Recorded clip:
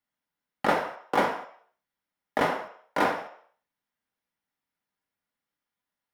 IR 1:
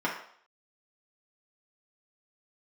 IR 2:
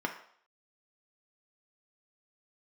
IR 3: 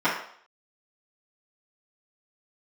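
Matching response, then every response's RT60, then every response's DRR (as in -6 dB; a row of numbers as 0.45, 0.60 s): 2; 0.60, 0.60, 0.60 s; -5.0, 2.0, -13.5 dB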